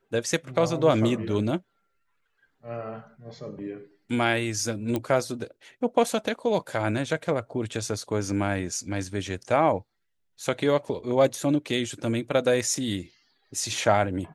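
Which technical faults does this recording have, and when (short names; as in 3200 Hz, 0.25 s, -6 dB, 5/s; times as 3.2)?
4.96 pop -14 dBFS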